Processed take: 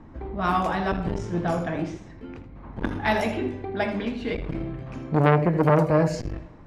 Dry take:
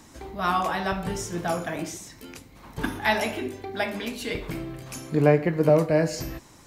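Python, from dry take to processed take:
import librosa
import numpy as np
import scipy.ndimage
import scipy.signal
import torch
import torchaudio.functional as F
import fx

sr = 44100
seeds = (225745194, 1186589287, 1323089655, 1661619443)

y = fx.env_lowpass(x, sr, base_hz=1600.0, full_db=-19.5)
y = fx.tilt_eq(y, sr, slope=-2.0)
y = y + 10.0 ** (-12.5 / 20.0) * np.pad(y, (int(80 * sr / 1000.0), 0))[:len(y)]
y = fx.rev_spring(y, sr, rt60_s=1.3, pass_ms=(35, 54), chirp_ms=50, drr_db=19.5)
y = fx.transformer_sat(y, sr, knee_hz=930.0)
y = y * 10.0 ** (1.0 / 20.0)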